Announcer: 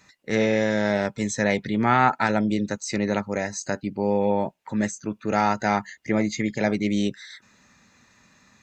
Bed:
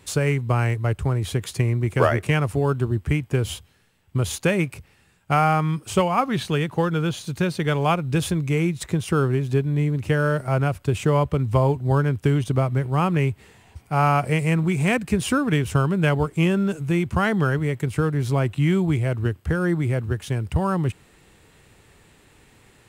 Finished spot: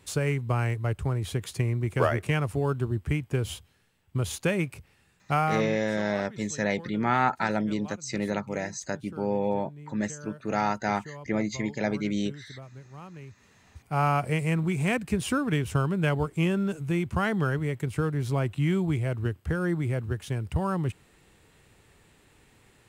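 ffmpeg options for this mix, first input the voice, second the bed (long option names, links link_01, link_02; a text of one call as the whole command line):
ffmpeg -i stem1.wav -i stem2.wav -filter_complex "[0:a]adelay=5200,volume=-5dB[link_01];[1:a]volume=12.5dB,afade=type=out:start_time=5.36:duration=0.5:silence=0.125893,afade=type=in:start_time=13.28:duration=0.6:silence=0.125893[link_02];[link_01][link_02]amix=inputs=2:normalize=0" out.wav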